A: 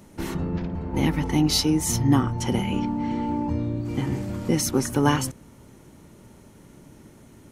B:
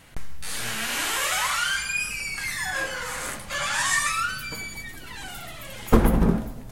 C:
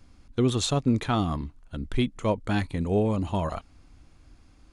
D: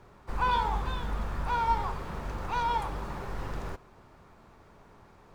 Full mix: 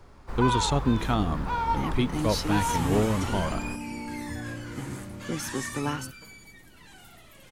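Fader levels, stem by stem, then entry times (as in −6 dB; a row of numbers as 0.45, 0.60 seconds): −10.0, −14.0, −1.0, 0.0 decibels; 0.80, 1.70, 0.00, 0.00 seconds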